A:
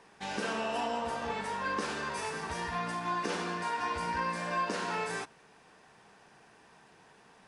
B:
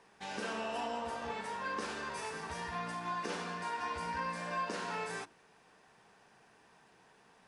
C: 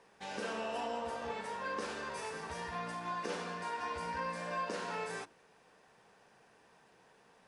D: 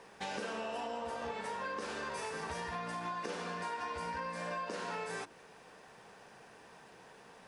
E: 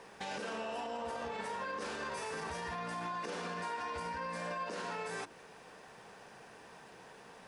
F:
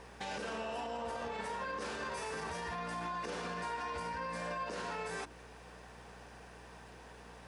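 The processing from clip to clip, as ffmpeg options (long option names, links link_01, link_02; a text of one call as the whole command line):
ffmpeg -i in.wav -af "bandreject=frequency=50:width_type=h:width=6,bandreject=frequency=100:width_type=h:width=6,bandreject=frequency=150:width_type=h:width=6,bandreject=frequency=200:width_type=h:width=6,bandreject=frequency=250:width_type=h:width=6,bandreject=frequency=300:width_type=h:width=6,bandreject=frequency=350:width_type=h:width=6,volume=-4.5dB" out.wav
ffmpeg -i in.wav -af "equalizer=frequency=520:width=3.3:gain=5.5,volume=-1.5dB" out.wav
ffmpeg -i in.wav -af "acompressor=threshold=-45dB:ratio=6,volume=8dB" out.wav
ffmpeg -i in.wav -af "alimiter=level_in=9.5dB:limit=-24dB:level=0:latency=1:release=30,volume=-9.5dB,volume=2dB" out.wav
ffmpeg -i in.wav -af "aeval=exprs='val(0)+0.00141*(sin(2*PI*60*n/s)+sin(2*PI*2*60*n/s)/2+sin(2*PI*3*60*n/s)/3+sin(2*PI*4*60*n/s)/4+sin(2*PI*5*60*n/s)/5)':channel_layout=same" out.wav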